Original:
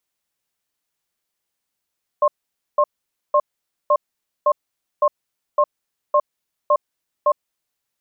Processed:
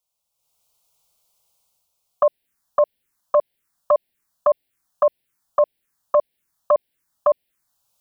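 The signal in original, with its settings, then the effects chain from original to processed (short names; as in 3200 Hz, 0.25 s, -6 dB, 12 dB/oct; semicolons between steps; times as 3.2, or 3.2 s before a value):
cadence 592 Hz, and 1070 Hz, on 0.06 s, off 0.50 s, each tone -14.5 dBFS 5.24 s
AGC gain up to 13 dB; envelope phaser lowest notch 300 Hz, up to 1200 Hz, full sweep at -15 dBFS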